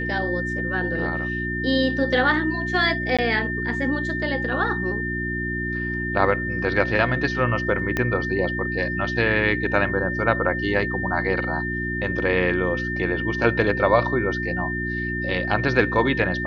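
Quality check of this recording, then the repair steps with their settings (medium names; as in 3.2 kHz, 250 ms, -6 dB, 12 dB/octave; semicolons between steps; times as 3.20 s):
hum 60 Hz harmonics 6 -29 dBFS
whine 1.8 kHz -27 dBFS
3.17–3.19 s: dropout 16 ms
7.97 s: pop -10 dBFS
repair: de-click; de-hum 60 Hz, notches 6; band-stop 1.8 kHz, Q 30; interpolate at 3.17 s, 16 ms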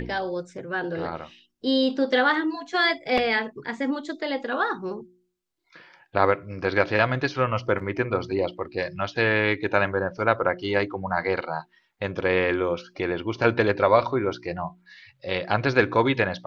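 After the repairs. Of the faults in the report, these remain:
7.97 s: pop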